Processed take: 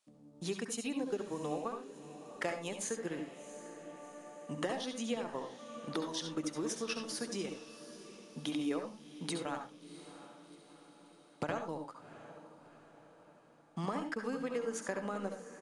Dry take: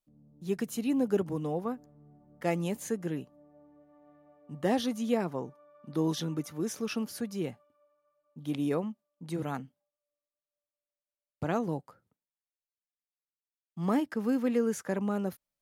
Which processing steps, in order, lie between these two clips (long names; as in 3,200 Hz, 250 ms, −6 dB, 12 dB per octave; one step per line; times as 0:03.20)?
high-pass filter 770 Hz 6 dB per octave
downward compressor 4 to 1, threshold −51 dBFS, peak gain reduction 18.5 dB
transient designer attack +3 dB, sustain −9 dB
feedback delay with all-pass diffusion 712 ms, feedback 54%, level −14 dB
on a send at −6 dB: convolution reverb RT60 0.25 s, pre-delay 65 ms
on the sum: downsampling to 22,050 Hz
level +12 dB